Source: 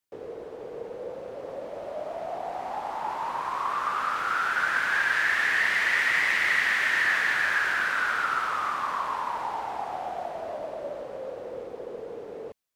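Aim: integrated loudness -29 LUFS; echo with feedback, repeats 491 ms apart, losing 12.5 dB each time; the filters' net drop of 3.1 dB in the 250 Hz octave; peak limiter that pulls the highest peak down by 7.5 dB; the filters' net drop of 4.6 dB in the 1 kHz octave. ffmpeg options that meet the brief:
-af "equalizer=f=250:t=o:g=-4,equalizer=f=1000:t=o:g=-6,alimiter=limit=0.0944:level=0:latency=1,aecho=1:1:491|982|1473:0.237|0.0569|0.0137,volume=1.26"

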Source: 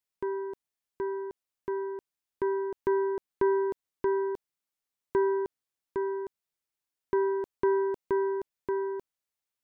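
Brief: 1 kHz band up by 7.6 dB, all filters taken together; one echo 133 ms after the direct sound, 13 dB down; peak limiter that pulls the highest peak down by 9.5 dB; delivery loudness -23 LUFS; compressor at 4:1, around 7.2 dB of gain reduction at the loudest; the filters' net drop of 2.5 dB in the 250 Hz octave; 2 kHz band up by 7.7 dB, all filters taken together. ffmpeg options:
-af "equalizer=f=250:t=o:g=-8.5,equalizer=f=1000:t=o:g=6.5,equalizer=f=2000:t=o:g=8,acompressor=threshold=0.0355:ratio=4,alimiter=level_in=1.19:limit=0.0631:level=0:latency=1,volume=0.841,aecho=1:1:133:0.224,volume=4.73"

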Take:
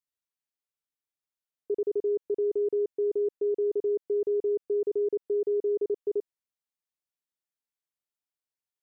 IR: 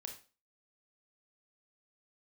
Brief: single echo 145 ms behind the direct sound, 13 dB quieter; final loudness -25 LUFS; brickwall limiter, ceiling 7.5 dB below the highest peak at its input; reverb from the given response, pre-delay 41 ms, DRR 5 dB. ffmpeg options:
-filter_complex "[0:a]alimiter=level_in=2:limit=0.0631:level=0:latency=1,volume=0.501,aecho=1:1:145:0.224,asplit=2[s0][s1];[1:a]atrim=start_sample=2205,adelay=41[s2];[s1][s2]afir=irnorm=-1:irlink=0,volume=0.841[s3];[s0][s3]amix=inputs=2:normalize=0,volume=3.55"

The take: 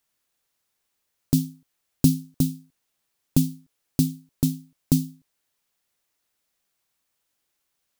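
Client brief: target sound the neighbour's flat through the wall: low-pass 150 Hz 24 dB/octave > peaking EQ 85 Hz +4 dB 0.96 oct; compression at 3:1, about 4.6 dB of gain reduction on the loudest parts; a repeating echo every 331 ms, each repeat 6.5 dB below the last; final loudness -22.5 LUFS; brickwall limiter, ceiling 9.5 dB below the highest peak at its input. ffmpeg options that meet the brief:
-af "acompressor=threshold=0.1:ratio=3,alimiter=limit=0.168:level=0:latency=1,lowpass=f=150:w=0.5412,lowpass=f=150:w=1.3066,equalizer=f=85:t=o:w=0.96:g=4,aecho=1:1:331|662|993|1324|1655|1986:0.473|0.222|0.105|0.0491|0.0231|0.0109,volume=7.5"

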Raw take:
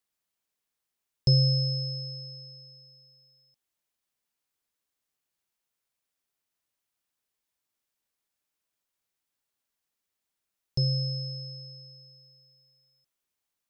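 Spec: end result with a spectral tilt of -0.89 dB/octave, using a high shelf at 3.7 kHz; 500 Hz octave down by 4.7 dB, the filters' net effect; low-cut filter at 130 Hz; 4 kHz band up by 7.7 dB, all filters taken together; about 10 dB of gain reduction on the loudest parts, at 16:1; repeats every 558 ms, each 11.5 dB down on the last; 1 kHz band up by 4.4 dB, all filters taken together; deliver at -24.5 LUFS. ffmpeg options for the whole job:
-af "highpass=130,equalizer=f=500:t=o:g=-7,equalizer=f=1000:t=o:g=8.5,highshelf=f=3700:g=8,equalizer=f=4000:t=o:g=3.5,acompressor=threshold=0.0562:ratio=16,aecho=1:1:558|1116|1674:0.266|0.0718|0.0194,volume=1.88"

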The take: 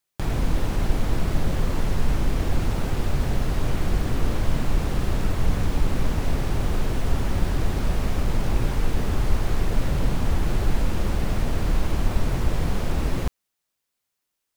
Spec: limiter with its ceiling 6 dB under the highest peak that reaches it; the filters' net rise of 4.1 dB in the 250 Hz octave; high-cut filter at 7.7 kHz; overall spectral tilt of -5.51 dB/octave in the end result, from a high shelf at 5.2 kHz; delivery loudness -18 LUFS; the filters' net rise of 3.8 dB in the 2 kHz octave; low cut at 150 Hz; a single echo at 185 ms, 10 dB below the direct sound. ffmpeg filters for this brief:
-af "highpass=150,lowpass=7700,equalizer=f=250:t=o:g=6.5,equalizer=f=2000:t=o:g=5.5,highshelf=f=5200:g=-5.5,alimiter=limit=0.1:level=0:latency=1,aecho=1:1:185:0.316,volume=3.55"

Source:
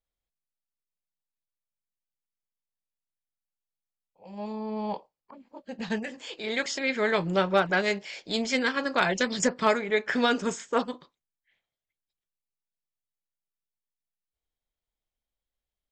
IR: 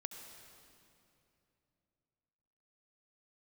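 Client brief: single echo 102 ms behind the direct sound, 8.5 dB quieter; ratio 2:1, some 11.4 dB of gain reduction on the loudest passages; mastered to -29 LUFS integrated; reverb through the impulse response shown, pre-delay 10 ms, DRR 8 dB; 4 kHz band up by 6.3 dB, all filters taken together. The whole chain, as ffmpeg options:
-filter_complex "[0:a]equalizer=f=4000:t=o:g=7.5,acompressor=threshold=0.0112:ratio=2,aecho=1:1:102:0.376,asplit=2[s0][s1];[1:a]atrim=start_sample=2205,adelay=10[s2];[s1][s2]afir=irnorm=-1:irlink=0,volume=0.531[s3];[s0][s3]amix=inputs=2:normalize=0,volume=1.88"

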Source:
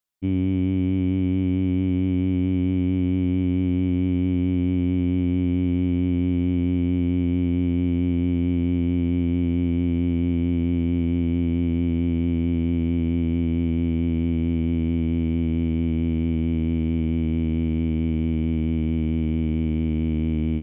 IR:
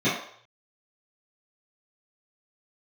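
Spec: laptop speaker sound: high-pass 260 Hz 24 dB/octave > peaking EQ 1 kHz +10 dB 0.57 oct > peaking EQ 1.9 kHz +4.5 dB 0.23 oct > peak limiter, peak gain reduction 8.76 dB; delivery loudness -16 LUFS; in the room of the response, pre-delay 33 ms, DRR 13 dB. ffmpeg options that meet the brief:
-filter_complex "[0:a]asplit=2[s0][s1];[1:a]atrim=start_sample=2205,adelay=33[s2];[s1][s2]afir=irnorm=-1:irlink=0,volume=0.0376[s3];[s0][s3]amix=inputs=2:normalize=0,highpass=f=260:w=0.5412,highpass=f=260:w=1.3066,equalizer=f=1000:t=o:w=0.57:g=10,equalizer=f=1900:t=o:w=0.23:g=4.5,volume=5.96,alimiter=limit=0.335:level=0:latency=1"

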